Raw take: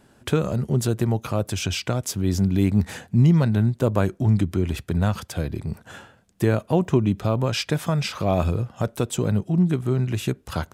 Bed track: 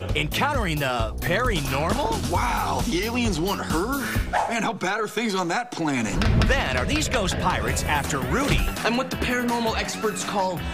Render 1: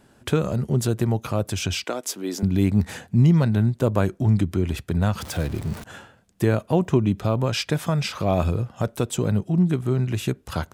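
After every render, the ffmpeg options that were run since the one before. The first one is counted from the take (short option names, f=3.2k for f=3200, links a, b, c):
-filter_complex "[0:a]asettb=1/sr,asplit=3[a][b][c];[a]atrim=end=1.844[d];[b]atrim=start=1.84:end=2.43,asetpts=PTS-STARTPTS,afade=t=in:d=0.004:c=qsin,afade=t=out:st=0.586:d=0.004:c=qsin,highpass=f=270:w=0.5412,highpass=f=270:w=1.3066[e];[c]atrim=start=2.426[f];[d][e]acrossfade=d=0.004:c1=hsin:c2=qsin[g];[g][f]acrossfade=d=0.004:c1=qsin:c2=hsin,asettb=1/sr,asplit=3[h][i][j];[h]atrim=end=5.204[k];[i]atrim=start=5.2:end=5.84,asetpts=PTS-STARTPTS,afade=t=in:d=0.004:c=qsin,afade=t=out:st=0.636:d=0.004:c=qsin,aeval=exprs='val(0)+0.5*0.0224*sgn(val(0))':c=same[l];[j]atrim=start=5.836[m];[k][l]acrossfade=d=0.004:c1=hsin:c2=qsin[n];[n][m]acrossfade=d=0.004:c1=qsin:c2=hsin"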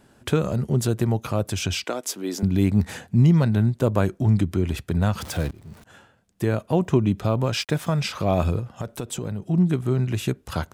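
-filter_complex "[0:a]asettb=1/sr,asplit=3[a][b][c];[a]atrim=end=7.424[d];[b]atrim=start=7.42:end=8.01,asetpts=PTS-STARTPTS,afade=t=in:d=0.004:c=qsin,afade=t=out:st=0.586:d=0.004:c=qsin,aeval=exprs='sgn(val(0))*max(abs(val(0))-0.00398,0)':c=same[e];[c]atrim=start=8.006[f];[d][e]acrossfade=d=0.004:c1=hsin:c2=qsin[g];[g][f]acrossfade=d=0.004:c1=qsin:c2=hsin,asettb=1/sr,asplit=3[h][i][j];[h]atrim=end=8.594[k];[i]atrim=start=8.59:end=9.43,asetpts=PTS-STARTPTS,afade=t=in:d=0.004:c=qsin,afade=t=out:st=0.836:d=0.004:c=qsin,acompressor=threshold=-25dB:ratio=6:attack=3.2:release=140:knee=1:detection=peak[l];[j]atrim=start=9.426[m];[k][l]acrossfade=d=0.004:c1=hsin:c2=qsin[n];[n][m]acrossfade=d=0.004:c1=qsin:c2=hsin,asplit=2[o][p];[o]atrim=end=5.51,asetpts=PTS-STARTPTS,afade=t=out:st=5.506:d=0.004:c=hsin:silence=0.0794328[q];[p]atrim=start=5.51,asetpts=PTS-STARTPTS,afade=t=in:d=1.39:silence=0.0794328[r];[q][r]concat=n=2:v=0:a=1"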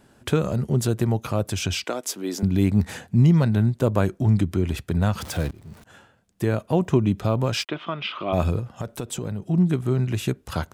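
-filter_complex "[0:a]asplit=3[a][b][c];[a]afade=t=out:st=7.64:d=0.02[d];[b]highpass=330,equalizer=f=340:t=q:w=4:g=5,equalizer=f=490:t=q:w=4:g=-9,equalizer=f=810:t=q:w=4:g=-6,equalizer=f=1.2k:t=q:w=4:g=4,equalizer=f=1.7k:t=q:w=4:g=-6,equalizer=f=3.1k:t=q:w=4:g=9,lowpass=f=3.2k:w=0.5412,lowpass=f=3.2k:w=1.3066,afade=t=in:st=7.64:d=0.02,afade=t=out:st=8.32:d=0.02[e];[c]afade=t=in:st=8.32:d=0.02[f];[d][e][f]amix=inputs=3:normalize=0"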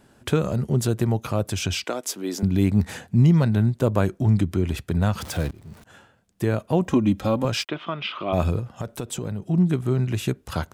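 -filter_complex "[0:a]asettb=1/sr,asplit=3[a][b][c];[a]atrim=end=6.874[d];[b]atrim=start=6.87:end=7.45,asetpts=PTS-STARTPTS,afade=t=in:d=0.004:c=qsin,afade=t=out:st=0.576:d=0.004:c=qsin,aecho=1:1:3.7:0.71,atrim=end_sample=25578[e];[c]atrim=start=7.446[f];[d][e]acrossfade=d=0.004:c1=hsin:c2=qsin[g];[g][f]acrossfade=d=0.004:c1=qsin:c2=hsin"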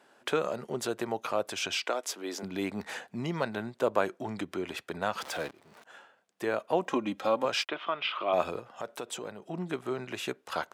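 -af "highpass=530,highshelf=f=5.9k:g=-11.5"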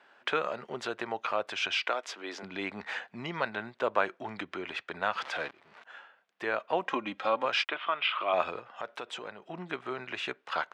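-af "lowpass=2.6k,tiltshelf=f=790:g=-8"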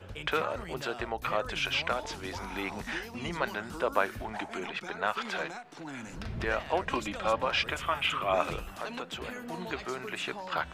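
-filter_complex "[1:a]volume=-18dB[a];[0:a][a]amix=inputs=2:normalize=0"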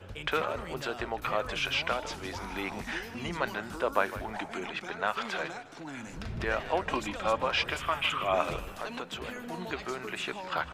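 -filter_complex "[0:a]asplit=4[a][b][c][d];[b]adelay=155,afreqshift=-52,volume=-14.5dB[e];[c]adelay=310,afreqshift=-104,volume=-24.4dB[f];[d]adelay=465,afreqshift=-156,volume=-34.3dB[g];[a][e][f][g]amix=inputs=4:normalize=0"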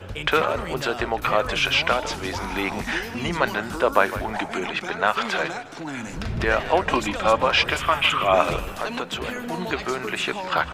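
-af "volume=9.5dB,alimiter=limit=-2dB:level=0:latency=1"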